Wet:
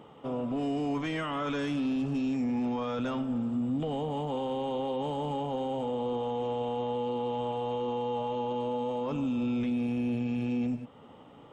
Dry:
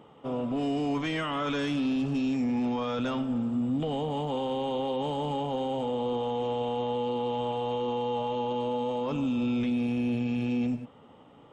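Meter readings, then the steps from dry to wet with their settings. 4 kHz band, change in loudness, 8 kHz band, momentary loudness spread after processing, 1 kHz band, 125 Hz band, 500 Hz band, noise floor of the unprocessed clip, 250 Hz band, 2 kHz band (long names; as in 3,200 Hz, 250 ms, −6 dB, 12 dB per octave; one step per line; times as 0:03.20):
−5.0 dB, −2.0 dB, can't be measured, 3 LU, −2.0 dB, −2.0 dB, −2.0 dB, −54 dBFS, −2.0 dB, −3.0 dB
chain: dynamic equaliser 3,900 Hz, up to −4 dB, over −50 dBFS, Q 0.97
in parallel at −2.5 dB: downward compressor, threshold −42 dBFS, peak gain reduction 15 dB
on the sum: level −3 dB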